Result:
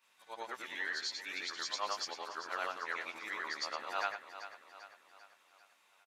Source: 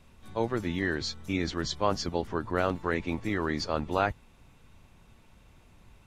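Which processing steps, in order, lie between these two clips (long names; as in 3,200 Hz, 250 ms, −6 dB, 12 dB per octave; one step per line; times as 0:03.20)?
every overlapping window played backwards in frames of 238 ms
high-pass filter 1,100 Hz 12 dB per octave
on a send: repeating echo 394 ms, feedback 50%, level −12 dB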